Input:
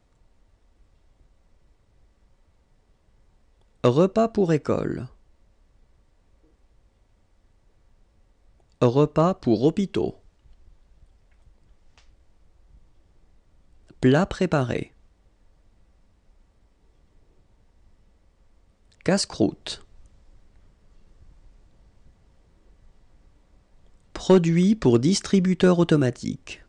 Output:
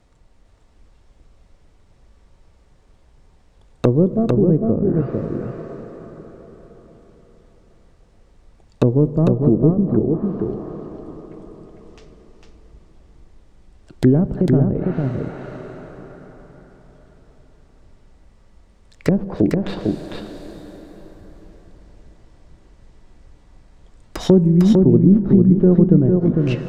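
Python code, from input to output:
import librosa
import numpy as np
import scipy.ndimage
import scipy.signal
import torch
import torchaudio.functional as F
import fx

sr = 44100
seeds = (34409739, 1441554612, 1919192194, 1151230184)

y = fx.tracing_dist(x, sr, depth_ms=0.25)
y = fx.lowpass(y, sr, hz=1400.0, slope=24, at=(9.47, 10.08))
y = fx.rev_plate(y, sr, seeds[0], rt60_s=4.9, hf_ratio=0.55, predelay_ms=0, drr_db=12.0)
y = fx.env_lowpass_down(y, sr, base_hz=340.0, full_db=-19.5)
y = y + 10.0 ** (-3.5 / 20.0) * np.pad(y, (int(452 * sr / 1000.0), 0))[:len(y)]
y = y * librosa.db_to_amplitude(6.5)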